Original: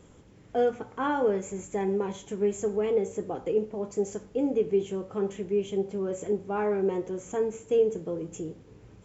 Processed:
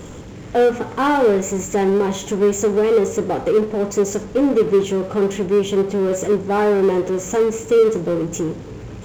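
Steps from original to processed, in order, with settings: power-law waveshaper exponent 0.7; trim +8 dB

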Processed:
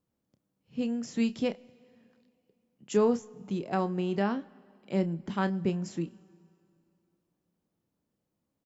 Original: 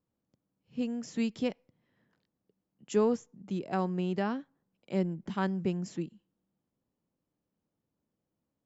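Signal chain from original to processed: doubling 30 ms -11.5 dB; on a send: reverberation RT60 2.7 s, pre-delay 26 ms, DRR 23 dB; on the sum: trim +2 dB

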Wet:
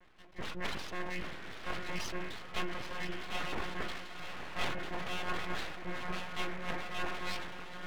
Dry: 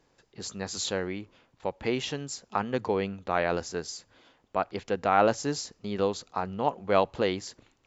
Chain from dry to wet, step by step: comb filter that takes the minimum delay 4.4 ms; monotone LPC vocoder at 8 kHz 180 Hz; reverb removal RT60 0.74 s; reverse; compression 12:1, threshold -40 dBFS, peak gain reduction 20 dB; reverse; steep low-pass 3.1 kHz; peaking EQ 290 Hz -12.5 dB 1.6 oct; echo that smears into a reverb 915 ms, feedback 55%, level -5.5 dB; reverberation RT60 0.15 s, pre-delay 3 ms, DRR -8 dB; full-wave rectifier; decay stretcher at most 45 dB/s; trim -5 dB

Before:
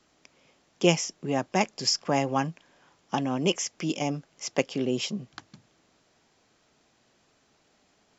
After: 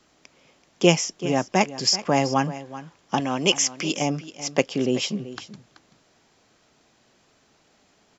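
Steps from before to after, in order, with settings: 3.20–3.93 s: tilt shelf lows -5 dB, about 640 Hz; delay 382 ms -15 dB; trim +4.5 dB

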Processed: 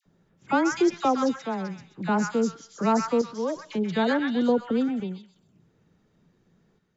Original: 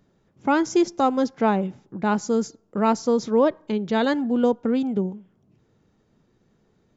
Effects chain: peaking EQ 170 Hz +9 dB 0.22 oct; phase dispersion lows, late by 60 ms, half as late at 1.2 kHz; square tremolo 0.56 Hz, depth 60%, duty 80%; repeats whose band climbs or falls 130 ms, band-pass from 1.7 kHz, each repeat 0.7 oct, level -1 dB; trim -2.5 dB

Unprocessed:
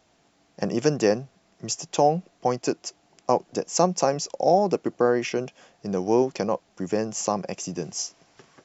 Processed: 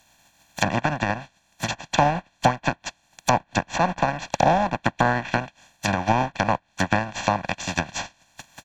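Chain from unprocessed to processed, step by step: spectral contrast reduction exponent 0.29; band-stop 5.1 kHz, Q 10; comb 1.2 ms, depth 90%; peak limiter -10.5 dBFS, peak gain reduction 9.5 dB; transient shaper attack +7 dB, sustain -5 dB; low-pass that closes with the level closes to 1.5 kHz, closed at -19.5 dBFS; trim +2.5 dB

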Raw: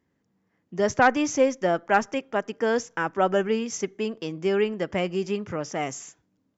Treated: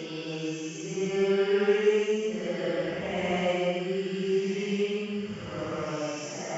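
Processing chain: feedback echo behind a high-pass 310 ms, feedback 55%, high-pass 2.1 kHz, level -5 dB; Paulstretch 4.2×, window 0.25 s, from 4.18 s; trim -2 dB

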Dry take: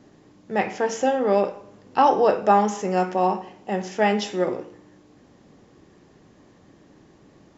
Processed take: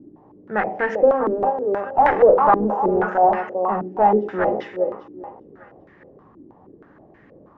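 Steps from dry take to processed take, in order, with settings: thinning echo 398 ms, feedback 39%, high-pass 380 Hz, level -6 dB; one-sided clip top -20 dBFS; step-sequenced low-pass 6.3 Hz 320–1900 Hz

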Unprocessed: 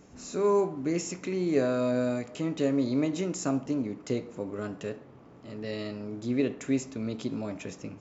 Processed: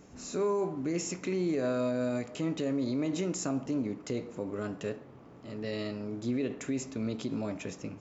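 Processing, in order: peak limiter -23 dBFS, peak gain reduction 9 dB

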